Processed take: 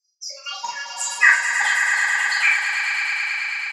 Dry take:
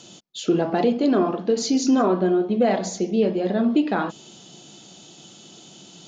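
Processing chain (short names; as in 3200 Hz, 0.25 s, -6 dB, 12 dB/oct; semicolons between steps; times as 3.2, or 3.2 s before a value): per-bin expansion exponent 3; Chebyshev band-pass 720–4400 Hz, order 2; high shelf 3300 Hz -10 dB; LFO high-pass saw down 1.9 Hz 980–3300 Hz; wide varispeed 1.63×; doubler 42 ms -2.5 dB; swelling echo 0.108 s, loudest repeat 5, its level -8 dB; reverb RT60 0.35 s, pre-delay 3 ms, DRR -6.5 dB; gain +5.5 dB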